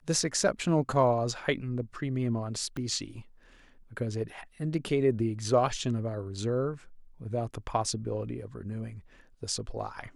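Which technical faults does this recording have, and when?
0:02.77: click −25 dBFS

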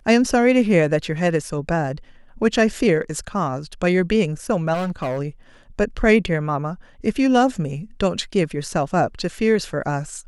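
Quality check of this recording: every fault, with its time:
0:04.73–0:05.20: clipping −20.5 dBFS

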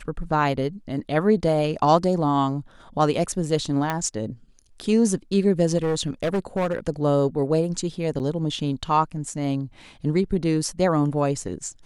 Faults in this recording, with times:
0:03.90: click −11 dBFS
0:05.77–0:06.79: clipping −19 dBFS
0:08.19–0:08.20: drop-out 8.7 ms

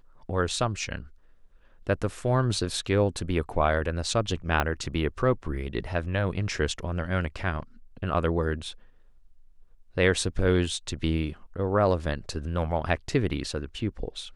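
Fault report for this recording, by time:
0:04.60: click −10 dBFS

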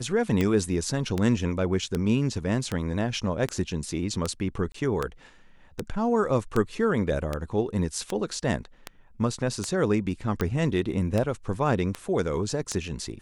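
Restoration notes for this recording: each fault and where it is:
scratch tick 78 rpm −13 dBFS
0:04.72–0:04.74: drop-out 24 ms

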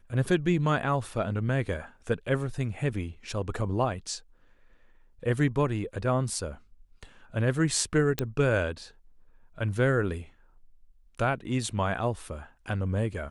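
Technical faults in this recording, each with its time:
0:08.19: click −11 dBFS

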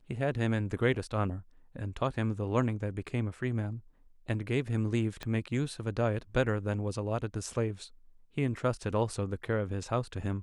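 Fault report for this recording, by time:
0:05.23: click −22 dBFS

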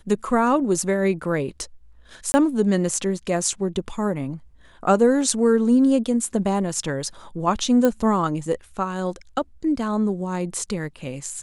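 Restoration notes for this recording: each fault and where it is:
0:02.32–0:02.34: drop-out 20 ms
0:07.85: click −8 dBFS

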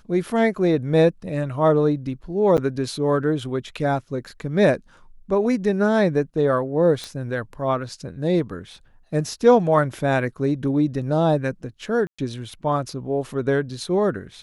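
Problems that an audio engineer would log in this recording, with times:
0:02.57–0:02.58: drop-out 8.8 ms
0:07.04: click −17 dBFS
0:12.07–0:12.19: drop-out 115 ms

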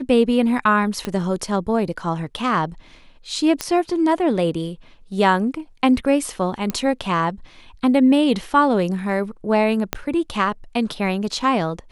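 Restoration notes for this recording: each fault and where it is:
0:01.05: click −11 dBFS
0:03.61: click −7 dBFS
0:06.70: click −10 dBFS
0:09.93: click −5 dBFS

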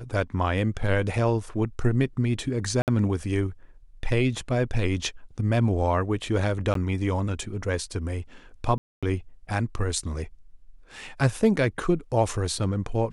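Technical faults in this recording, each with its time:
0:02.82–0:02.88: drop-out 58 ms
0:06.74–0:06.75: drop-out 13 ms
0:08.78–0:09.03: drop-out 246 ms

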